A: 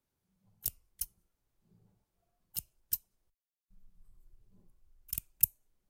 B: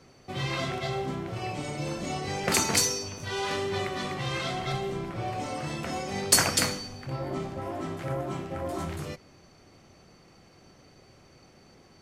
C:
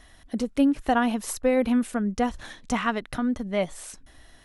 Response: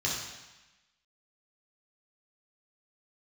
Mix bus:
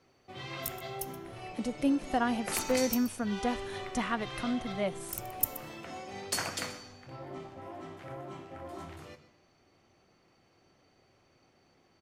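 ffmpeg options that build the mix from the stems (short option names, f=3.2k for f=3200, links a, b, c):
-filter_complex "[0:a]volume=-3.5dB,asplit=3[a][b][c];[b]volume=-18dB[d];[c]volume=-15dB[e];[1:a]bass=f=250:g=-7,treble=f=4k:g=-6,volume=-9dB,asplit=3[f][g][h];[g]volume=-18.5dB[i];[h]volume=-16.5dB[j];[2:a]equalizer=f=9.6k:w=1.5:g=4,adelay=1250,volume=-7dB[k];[3:a]atrim=start_sample=2205[l];[d][i]amix=inputs=2:normalize=0[m];[m][l]afir=irnorm=-1:irlink=0[n];[e][j]amix=inputs=2:normalize=0,aecho=0:1:125:1[o];[a][f][k][n][o]amix=inputs=5:normalize=0"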